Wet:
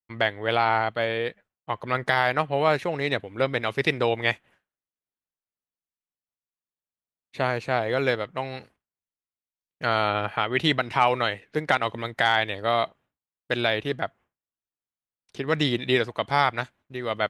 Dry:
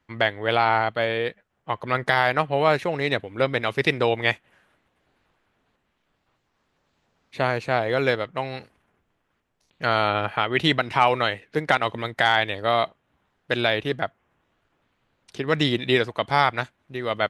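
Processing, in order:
downward expander −45 dBFS
level −2 dB

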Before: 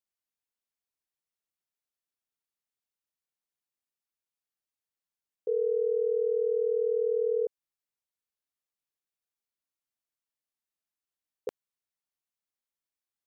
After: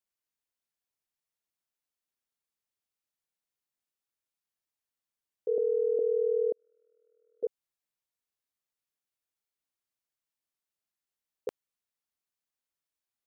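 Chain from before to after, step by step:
0:05.58–0:05.99: reverse
0:06.52–0:07.43: noise gate −21 dBFS, range −45 dB

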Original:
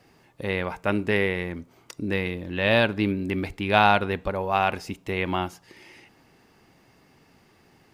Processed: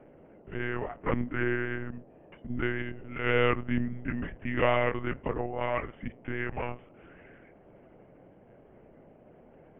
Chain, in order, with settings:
pitch shifter swept by a sawtooth −1 semitone, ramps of 223 ms
harmonic generator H 6 −25 dB, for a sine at −5 dBFS
one-pitch LPC vocoder at 8 kHz 150 Hz
speed change −19%
noise in a band 110–650 Hz −51 dBFS
level −4.5 dB

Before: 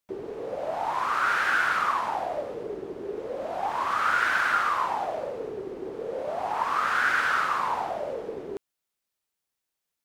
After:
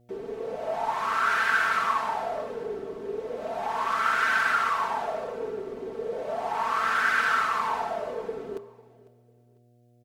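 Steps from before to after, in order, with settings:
comb filter 4.5 ms, depth 99%
hum removal 45.07 Hz, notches 28
hum with harmonics 120 Hz, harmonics 6, −58 dBFS −5 dB per octave
on a send: repeating echo 499 ms, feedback 29%, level −21 dB
on the sum: level −2.5 dB

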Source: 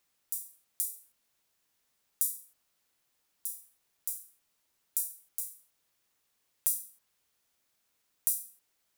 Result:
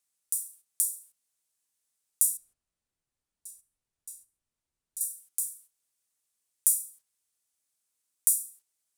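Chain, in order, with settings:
0:02.37–0:05.01: RIAA equalisation playback
noise gate −60 dBFS, range −8 dB
parametric band 8,900 Hz +14.5 dB 1.3 octaves
level −4.5 dB

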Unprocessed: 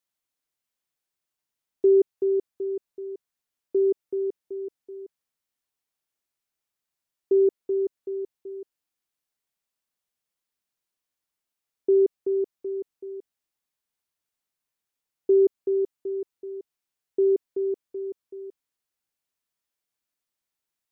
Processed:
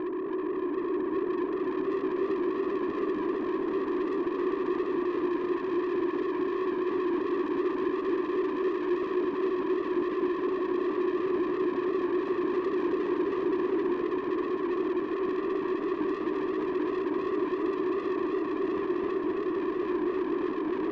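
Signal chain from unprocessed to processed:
compressor on every frequency bin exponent 0.2
leveller curve on the samples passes 5
pair of resonant band-passes 450 Hz, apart 1.1 octaves
low-shelf EQ 390 Hz +10.5 dB
notch filter 480 Hz, Q 13
echo that builds up and dies away 196 ms, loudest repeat 8, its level −7 dB
on a send at −3.5 dB: convolution reverb RT60 0.15 s, pre-delay 3 ms
on the sum: brickwall limiter −12 dBFS, peak gain reduction 6.5 dB
soft clipping −27 dBFS, distortion −7 dB
feedback echo with a swinging delay time 265 ms, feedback 72%, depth 83 cents, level −4.5 dB
level −3 dB

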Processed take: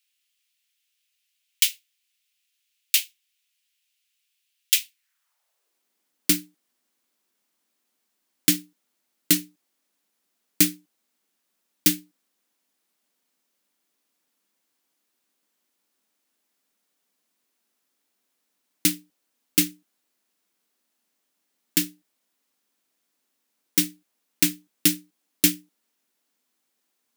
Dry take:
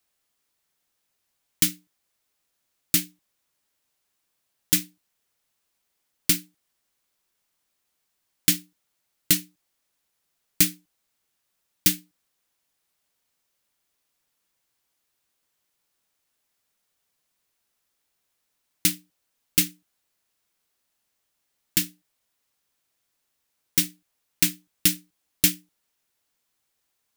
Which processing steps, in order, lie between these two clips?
high-pass filter sweep 2,700 Hz → 240 Hz, 0:04.89–0:05.89

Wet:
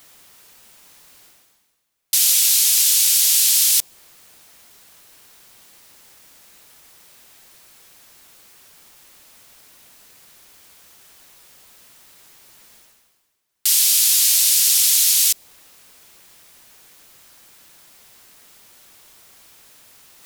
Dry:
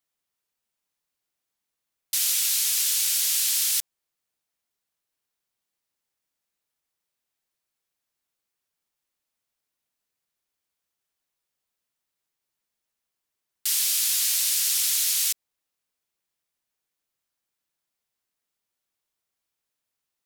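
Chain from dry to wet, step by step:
dynamic equaliser 1,500 Hz, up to −6 dB, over −48 dBFS, Q 1
reversed playback
upward compression, threshold −36 dBFS
reversed playback
level +8.5 dB

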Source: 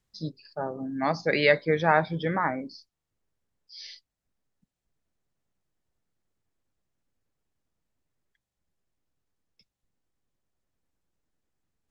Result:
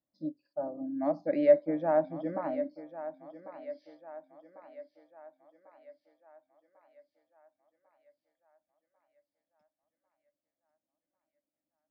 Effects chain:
pair of resonant band-passes 420 Hz, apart 0.96 octaves
feedback echo with a high-pass in the loop 1,096 ms, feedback 57%, high-pass 380 Hz, level −12 dB
level +3 dB

